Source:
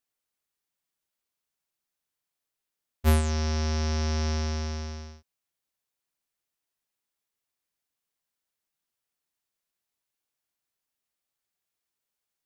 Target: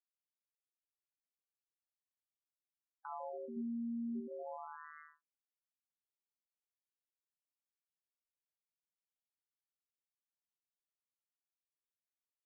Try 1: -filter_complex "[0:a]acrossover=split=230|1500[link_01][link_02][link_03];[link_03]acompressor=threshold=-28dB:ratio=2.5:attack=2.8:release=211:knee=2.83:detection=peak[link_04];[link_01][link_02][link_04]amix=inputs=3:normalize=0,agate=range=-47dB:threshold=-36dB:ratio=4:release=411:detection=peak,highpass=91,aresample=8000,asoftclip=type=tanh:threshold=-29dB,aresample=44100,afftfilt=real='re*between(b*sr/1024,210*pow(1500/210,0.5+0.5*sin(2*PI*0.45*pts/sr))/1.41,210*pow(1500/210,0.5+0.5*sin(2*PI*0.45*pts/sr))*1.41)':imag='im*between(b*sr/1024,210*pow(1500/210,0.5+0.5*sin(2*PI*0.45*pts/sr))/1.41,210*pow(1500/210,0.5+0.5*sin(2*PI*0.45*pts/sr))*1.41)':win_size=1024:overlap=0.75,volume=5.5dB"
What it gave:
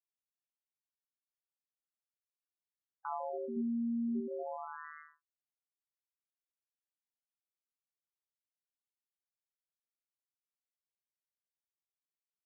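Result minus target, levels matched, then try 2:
soft clipping: distortion −5 dB
-filter_complex "[0:a]acrossover=split=230|1500[link_01][link_02][link_03];[link_03]acompressor=threshold=-28dB:ratio=2.5:attack=2.8:release=211:knee=2.83:detection=peak[link_04];[link_01][link_02][link_04]amix=inputs=3:normalize=0,agate=range=-47dB:threshold=-36dB:ratio=4:release=411:detection=peak,highpass=91,aresample=8000,asoftclip=type=tanh:threshold=-38.5dB,aresample=44100,afftfilt=real='re*between(b*sr/1024,210*pow(1500/210,0.5+0.5*sin(2*PI*0.45*pts/sr))/1.41,210*pow(1500/210,0.5+0.5*sin(2*PI*0.45*pts/sr))*1.41)':imag='im*between(b*sr/1024,210*pow(1500/210,0.5+0.5*sin(2*PI*0.45*pts/sr))/1.41,210*pow(1500/210,0.5+0.5*sin(2*PI*0.45*pts/sr))*1.41)':win_size=1024:overlap=0.75,volume=5.5dB"

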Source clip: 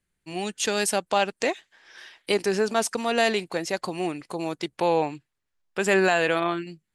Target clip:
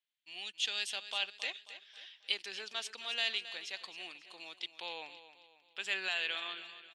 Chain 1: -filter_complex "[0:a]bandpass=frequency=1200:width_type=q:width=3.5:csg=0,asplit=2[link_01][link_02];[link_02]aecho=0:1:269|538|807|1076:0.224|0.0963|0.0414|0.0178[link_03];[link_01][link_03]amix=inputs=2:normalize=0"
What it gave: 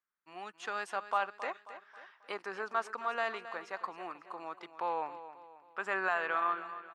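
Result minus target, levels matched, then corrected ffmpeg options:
4,000 Hz band −17.0 dB
-filter_complex "[0:a]bandpass=frequency=3300:width_type=q:width=3.5:csg=0,asplit=2[link_01][link_02];[link_02]aecho=0:1:269|538|807|1076:0.224|0.0963|0.0414|0.0178[link_03];[link_01][link_03]amix=inputs=2:normalize=0"

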